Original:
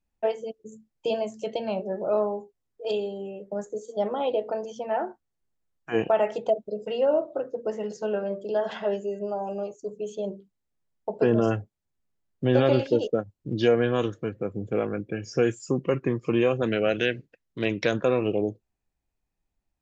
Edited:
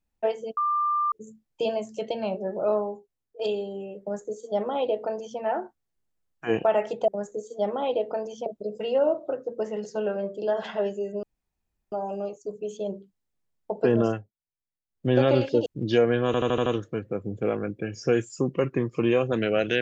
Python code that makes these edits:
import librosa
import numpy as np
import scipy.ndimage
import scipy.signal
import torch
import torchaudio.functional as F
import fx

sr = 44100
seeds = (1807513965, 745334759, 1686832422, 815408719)

y = fx.edit(x, sr, fx.insert_tone(at_s=0.57, length_s=0.55, hz=1190.0, db=-21.5),
    fx.fade_out_to(start_s=2.17, length_s=0.67, floor_db=-8.0),
    fx.duplicate(start_s=3.46, length_s=1.38, to_s=6.53),
    fx.insert_room_tone(at_s=9.3, length_s=0.69),
    fx.fade_down_up(start_s=11.42, length_s=1.04, db=-16.0, fade_s=0.2),
    fx.cut(start_s=13.04, length_s=0.32),
    fx.stutter(start_s=13.96, slice_s=0.08, count=6), tone=tone)